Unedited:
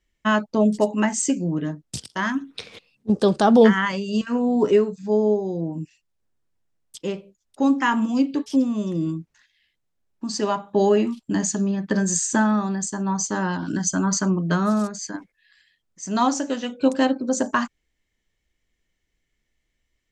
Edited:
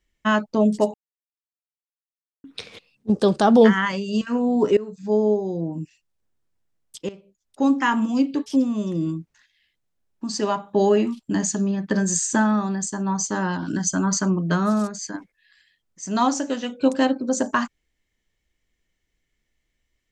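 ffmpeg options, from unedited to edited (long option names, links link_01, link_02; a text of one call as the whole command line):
ffmpeg -i in.wav -filter_complex "[0:a]asplit=5[link_01][link_02][link_03][link_04][link_05];[link_01]atrim=end=0.94,asetpts=PTS-STARTPTS,afade=type=out:start_time=0.936:duration=0.004:curve=hsin[link_06];[link_02]atrim=start=0.94:end=2.44,asetpts=PTS-STARTPTS,volume=0[link_07];[link_03]atrim=start=2.44:end=4.77,asetpts=PTS-STARTPTS,afade=type=in:duration=0.004:curve=hsin,afade=type=out:start_time=2.326:duration=0.004:curve=hsin:silence=0.1[link_08];[link_04]atrim=start=4.77:end=7.09,asetpts=PTS-STARTPTS,afade=type=in:duration=0.29:silence=0.1,afade=type=out:start_time=2.316:duration=0.004:curve=hsin:silence=0.16788[link_09];[link_05]atrim=start=7.09,asetpts=PTS-STARTPTS,afade=type=in:duration=0.53:silence=0.16788[link_10];[link_06][link_07][link_08][link_09][link_10]concat=n=5:v=0:a=1" out.wav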